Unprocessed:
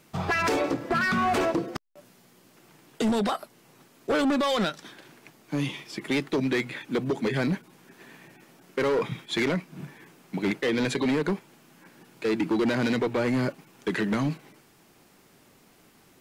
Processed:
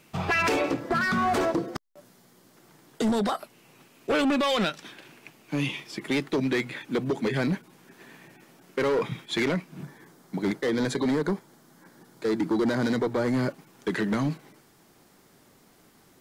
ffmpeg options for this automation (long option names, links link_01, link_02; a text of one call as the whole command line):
ffmpeg -i in.wav -af "asetnsamples=nb_out_samples=441:pad=0,asendcmd='0.8 equalizer g -5.5;3.4 equalizer g 6.5;5.8 equalizer g -1;9.83 equalizer g -13;13.34 equalizer g -5',equalizer=frequency=2600:width_type=o:width=0.45:gain=5.5" out.wav